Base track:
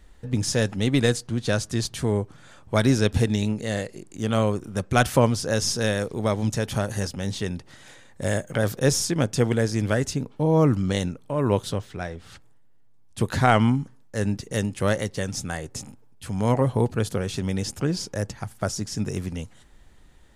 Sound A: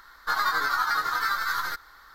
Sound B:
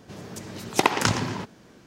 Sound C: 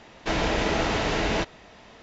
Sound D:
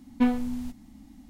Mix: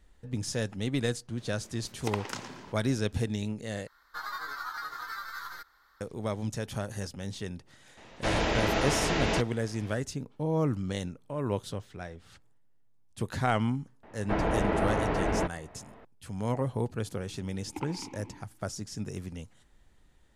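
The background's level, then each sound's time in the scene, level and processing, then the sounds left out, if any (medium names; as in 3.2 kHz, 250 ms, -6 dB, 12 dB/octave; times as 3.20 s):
base track -9 dB
1.28 s: add B -14.5 dB + Bessel high-pass 210 Hz
3.87 s: replace with A -12.5 dB
7.97 s: add C -3 dB
14.03 s: add C -2 dB + low-pass 1.5 kHz
16.97 s: add B -8.5 dB + vowel filter u
not used: D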